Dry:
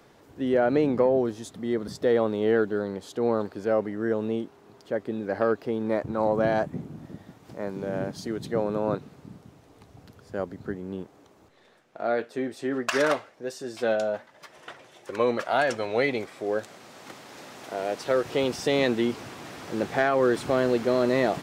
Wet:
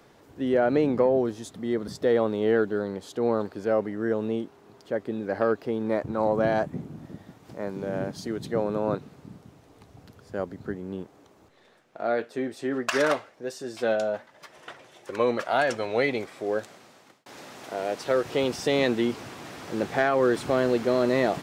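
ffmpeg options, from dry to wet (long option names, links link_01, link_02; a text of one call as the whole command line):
ffmpeg -i in.wav -filter_complex "[0:a]asplit=2[link_01][link_02];[link_01]atrim=end=17.26,asetpts=PTS-STARTPTS,afade=type=out:start_time=16.59:duration=0.67[link_03];[link_02]atrim=start=17.26,asetpts=PTS-STARTPTS,afade=type=in:duration=0.004:curve=hsin[link_04];[link_03][link_04]concat=n=2:v=0:a=1" out.wav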